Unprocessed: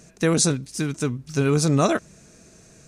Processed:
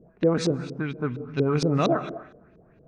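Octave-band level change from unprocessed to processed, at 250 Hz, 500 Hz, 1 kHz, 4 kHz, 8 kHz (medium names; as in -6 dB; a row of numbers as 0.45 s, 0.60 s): -2.5 dB, -1.0 dB, -2.0 dB, -6.5 dB, -17.5 dB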